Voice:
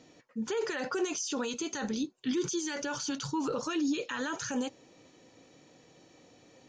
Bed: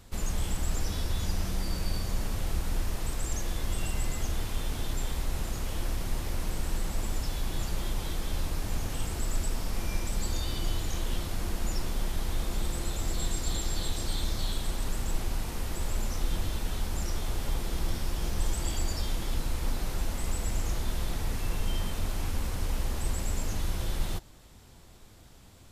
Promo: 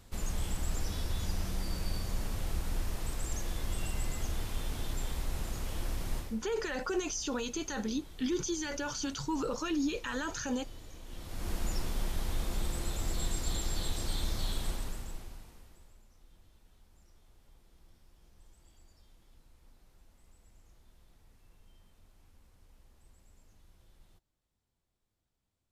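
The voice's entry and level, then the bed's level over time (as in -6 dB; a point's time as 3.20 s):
5.95 s, -1.5 dB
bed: 6.18 s -4 dB
6.39 s -18 dB
11.03 s -18 dB
11.51 s -3 dB
14.69 s -3 dB
16.04 s -31 dB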